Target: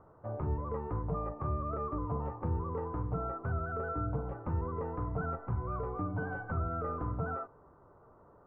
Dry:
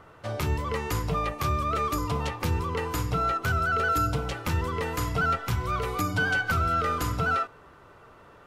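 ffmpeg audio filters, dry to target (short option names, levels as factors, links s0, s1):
-af "lowpass=f=1100:w=0.5412,lowpass=f=1100:w=1.3066,volume=0.501"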